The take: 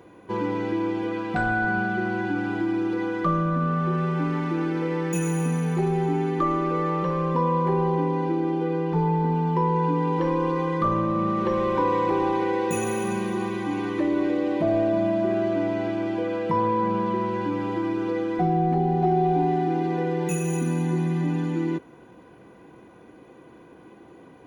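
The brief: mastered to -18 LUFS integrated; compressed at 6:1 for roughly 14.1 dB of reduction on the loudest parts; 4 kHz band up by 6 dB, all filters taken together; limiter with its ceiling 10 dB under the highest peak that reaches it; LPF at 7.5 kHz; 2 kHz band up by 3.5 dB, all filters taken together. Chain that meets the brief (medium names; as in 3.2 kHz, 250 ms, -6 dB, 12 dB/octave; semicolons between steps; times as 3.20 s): low-pass 7.5 kHz; peaking EQ 2 kHz +4 dB; peaking EQ 4 kHz +6.5 dB; compression 6:1, threshold -34 dBFS; trim +23 dB; peak limiter -10 dBFS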